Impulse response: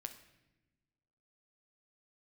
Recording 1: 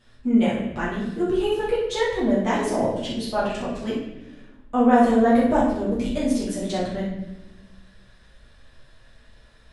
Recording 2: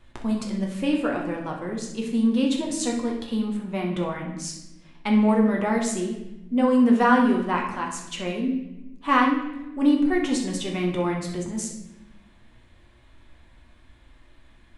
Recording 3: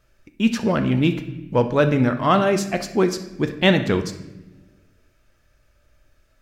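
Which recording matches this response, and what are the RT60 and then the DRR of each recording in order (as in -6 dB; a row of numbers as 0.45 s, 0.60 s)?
3; 1.0 s, 1.0 s, no single decay rate; -8.0 dB, -1.0 dB, 7.0 dB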